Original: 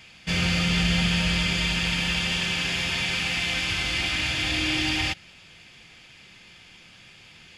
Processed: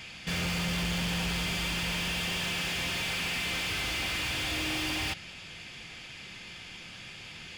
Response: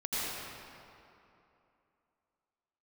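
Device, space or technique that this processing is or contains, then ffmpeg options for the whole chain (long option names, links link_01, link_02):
saturation between pre-emphasis and de-emphasis: -af "highshelf=frequency=3500:gain=9,asoftclip=type=tanh:threshold=-32.5dB,highshelf=frequency=3500:gain=-9,volume=5dB"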